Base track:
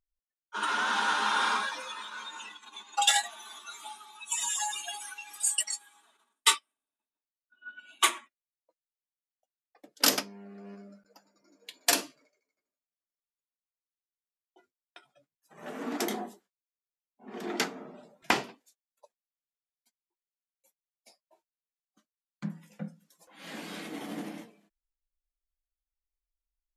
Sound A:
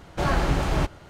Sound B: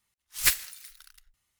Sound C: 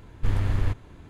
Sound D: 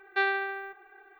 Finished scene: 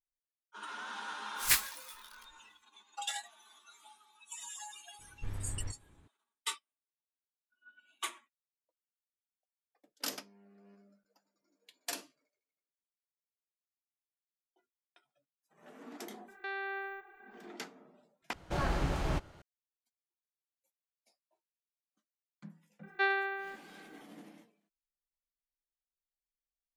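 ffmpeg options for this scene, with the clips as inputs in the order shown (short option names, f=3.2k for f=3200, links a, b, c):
-filter_complex "[4:a]asplit=2[a][b];[0:a]volume=-14.5dB[c];[2:a]flanger=delay=18.5:depth=4.6:speed=2.5[d];[a]alimiter=level_in=2.5dB:limit=-24dB:level=0:latency=1:release=71,volume=-2.5dB[e];[c]asplit=2[f][g];[f]atrim=end=18.334[h];[1:a]atrim=end=1.09,asetpts=PTS-STARTPTS,volume=-9.5dB[i];[g]atrim=start=19.416[j];[d]atrim=end=1.59,asetpts=PTS-STARTPTS,volume=-1dB,afade=t=in:d=0.004:c=hsin,afade=t=out:st=1.586:d=0.004:c=hsin,adelay=1040[k];[3:a]atrim=end=1.09,asetpts=PTS-STARTPTS,volume=-16dB,afade=t=in:d=0.004:c=hsin,afade=t=out:st=1.086:d=0.004:c=hsin,adelay=4990[l];[e]atrim=end=1.19,asetpts=PTS-STARTPTS,volume=-3.5dB,afade=t=in:d=0.004:c=hsin,afade=t=out:st=1.186:d=0.004:c=hsin,adelay=16280[m];[b]atrim=end=1.19,asetpts=PTS-STARTPTS,volume=-3.5dB,afade=t=in:d=0.004:c=hsin,afade=t=out:st=1.186:d=0.004:c=hsin,adelay=22830[n];[h][i]acrossfade=d=0.004:c1=hsin:c2=hsin[o];[o][j]acrossfade=d=0.004:c1=hsin:c2=hsin[p];[p][k][l][m][n]amix=inputs=5:normalize=0"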